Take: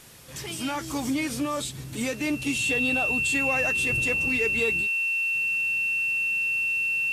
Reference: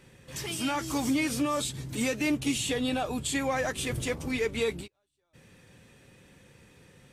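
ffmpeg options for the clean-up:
-af "bandreject=f=2700:w=30,afwtdn=0.0035"

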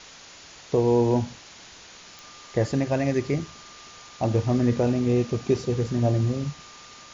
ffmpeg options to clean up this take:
-af "adeclick=t=4,bandreject=f=1200:w=30,afwtdn=0.0079"

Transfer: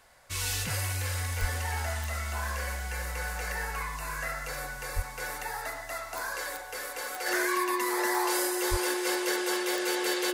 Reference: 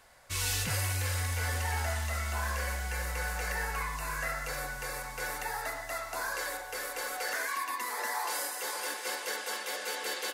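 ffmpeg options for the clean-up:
-filter_complex "[0:a]adeclick=t=4,bandreject=f=360:w=30,asplit=3[s0][s1][s2];[s0]afade=t=out:st=1.4:d=0.02[s3];[s1]highpass=f=140:w=0.5412,highpass=f=140:w=1.3066,afade=t=in:st=1.4:d=0.02,afade=t=out:st=1.52:d=0.02[s4];[s2]afade=t=in:st=1.52:d=0.02[s5];[s3][s4][s5]amix=inputs=3:normalize=0,asplit=3[s6][s7][s8];[s6]afade=t=out:st=4.95:d=0.02[s9];[s7]highpass=f=140:w=0.5412,highpass=f=140:w=1.3066,afade=t=in:st=4.95:d=0.02,afade=t=out:st=5.07:d=0.02[s10];[s8]afade=t=in:st=5.07:d=0.02[s11];[s9][s10][s11]amix=inputs=3:normalize=0,asplit=3[s12][s13][s14];[s12]afade=t=out:st=8.7:d=0.02[s15];[s13]highpass=f=140:w=0.5412,highpass=f=140:w=1.3066,afade=t=in:st=8.7:d=0.02,afade=t=out:st=8.82:d=0.02[s16];[s14]afade=t=in:st=8.82:d=0.02[s17];[s15][s16][s17]amix=inputs=3:normalize=0,asetnsamples=n=441:p=0,asendcmd='7.26 volume volume -4.5dB',volume=1"

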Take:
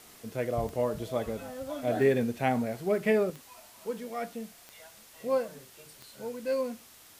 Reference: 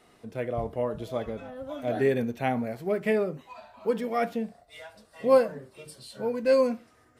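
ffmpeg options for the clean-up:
-af "adeclick=t=4,afwtdn=0.0022,asetnsamples=n=441:p=0,asendcmd='3.3 volume volume 8.5dB',volume=1"

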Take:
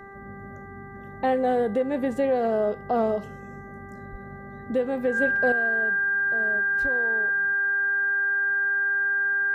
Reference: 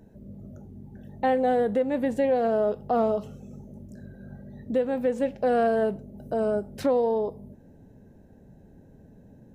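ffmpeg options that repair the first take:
-filter_complex "[0:a]bandreject=f=394.9:t=h:w=4,bandreject=f=789.8:t=h:w=4,bandreject=f=1184.7:t=h:w=4,bandreject=f=1579.6:t=h:w=4,bandreject=f=1974.5:t=h:w=4,bandreject=f=1600:w=30,asplit=3[s0][s1][s2];[s0]afade=t=out:st=4.11:d=0.02[s3];[s1]highpass=f=140:w=0.5412,highpass=f=140:w=1.3066,afade=t=in:st=4.11:d=0.02,afade=t=out:st=4.23:d=0.02[s4];[s2]afade=t=in:st=4.23:d=0.02[s5];[s3][s4][s5]amix=inputs=3:normalize=0,asplit=3[s6][s7][s8];[s6]afade=t=out:st=6.81:d=0.02[s9];[s7]highpass=f=140:w=0.5412,highpass=f=140:w=1.3066,afade=t=in:st=6.81:d=0.02,afade=t=out:st=6.93:d=0.02[s10];[s8]afade=t=in:st=6.93:d=0.02[s11];[s9][s10][s11]amix=inputs=3:normalize=0,asetnsamples=n=441:p=0,asendcmd='5.52 volume volume 11.5dB',volume=1"

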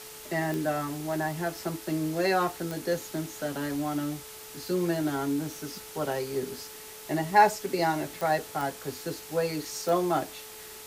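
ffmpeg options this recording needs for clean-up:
-af "adeclick=t=4,bandreject=f=432.8:t=h:w=4,bandreject=f=865.6:t=h:w=4,bandreject=f=1298.4:t=h:w=4,afftdn=nr=30:nf=-45"

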